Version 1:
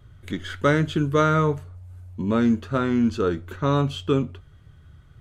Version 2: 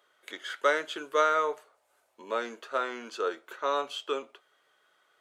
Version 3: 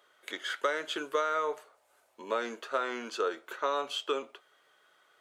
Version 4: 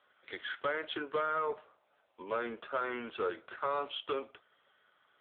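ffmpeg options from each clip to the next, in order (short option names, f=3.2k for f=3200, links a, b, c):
-af "highpass=f=490:w=0.5412,highpass=f=490:w=1.3066,volume=-2.5dB"
-af "acompressor=threshold=-28dB:ratio=12,volume=2.5dB"
-af "asoftclip=type=tanh:threshold=-24dB" -ar 8000 -c:a libopencore_amrnb -b:a 6700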